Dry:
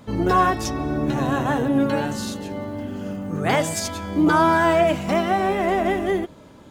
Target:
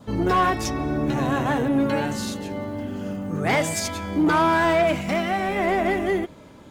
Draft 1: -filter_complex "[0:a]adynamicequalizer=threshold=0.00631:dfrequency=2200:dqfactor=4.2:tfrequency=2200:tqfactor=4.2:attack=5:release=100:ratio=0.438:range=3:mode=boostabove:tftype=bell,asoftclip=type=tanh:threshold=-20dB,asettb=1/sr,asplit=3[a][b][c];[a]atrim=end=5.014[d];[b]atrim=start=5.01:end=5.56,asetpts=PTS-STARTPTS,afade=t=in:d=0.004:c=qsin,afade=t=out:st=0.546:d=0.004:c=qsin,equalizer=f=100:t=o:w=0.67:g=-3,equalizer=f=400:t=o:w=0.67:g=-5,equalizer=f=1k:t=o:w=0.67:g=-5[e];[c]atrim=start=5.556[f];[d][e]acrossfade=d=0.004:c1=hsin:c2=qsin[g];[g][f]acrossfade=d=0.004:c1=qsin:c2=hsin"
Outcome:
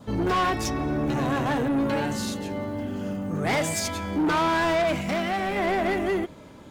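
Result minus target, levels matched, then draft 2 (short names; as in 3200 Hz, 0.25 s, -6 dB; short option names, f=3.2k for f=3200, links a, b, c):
soft clip: distortion +8 dB
-filter_complex "[0:a]adynamicequalizer=threshold=0.00631:dfrequency=2200:dqfactor=4.2:tfrequency=2200:tqfactor=4.2:attack=5:release=100:ratio=0.438:range=3:mode=boostabove:tftype=bell,asoftclip=type=tanh:threshold=-13dB,asettb=1/sr,asplit=3[a][b][c];[a]atrim=end=5.014[d];[b]atrim=start=5.01:end=5.56,asetpts=PTS-STARTPTS,afade=t=in:d=0.004:c=qsin,afade=t=out:st=0.546:d=0.004:c=qsin,equalizer=f=100:t=o:w=0.67:g=-3,equalizer=f=400:t=o:w=0.67:g=-5,equalizer=f=1k:t=o:w=0.67:g=-5[e];[c]atrim=start=5.556[f];[d][e]acrossfade=d=0.004:c1=hsin:c2=qsin[g];[g][f]acrossfade=d=0.004:c1=qsin:c2=hsin"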